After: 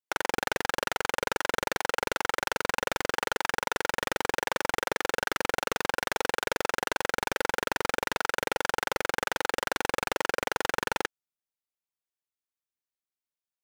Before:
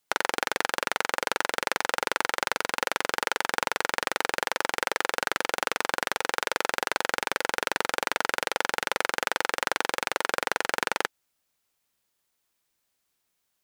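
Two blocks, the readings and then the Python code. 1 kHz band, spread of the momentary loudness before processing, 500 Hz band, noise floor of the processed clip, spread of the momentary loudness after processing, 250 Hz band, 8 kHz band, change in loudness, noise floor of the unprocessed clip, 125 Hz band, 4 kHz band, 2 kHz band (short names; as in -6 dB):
-2.0 dB, 1 LU, 0.0 dB, under -85 dBFS, 0 LU, +1.5 dB, -2.5 dB, -2.0 dB, -77 dBFS, +5.5 dB, -3.0 dB, -2.5 dB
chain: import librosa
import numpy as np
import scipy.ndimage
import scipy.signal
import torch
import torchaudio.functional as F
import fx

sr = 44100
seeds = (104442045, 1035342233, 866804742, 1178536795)

y = fx.level_steps(x, sr, step_db=16)
y = fx.leveller(y, sr, passes=5)
y = y * 10.0 ** (-8.0 / 20.0)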